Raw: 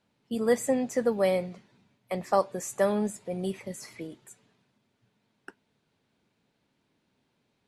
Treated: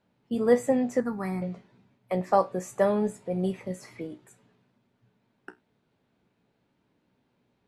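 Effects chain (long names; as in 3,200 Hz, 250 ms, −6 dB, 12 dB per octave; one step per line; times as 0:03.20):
high-shelf EQ 2,800 Hz −11 dB
tuned comb filter 61 Hz, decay 0.2 s, harmonics all, mix 70%
0:01.00–0:01.42: phaser with its sweep stopped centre 1,300 Hz, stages 4
level +7 dB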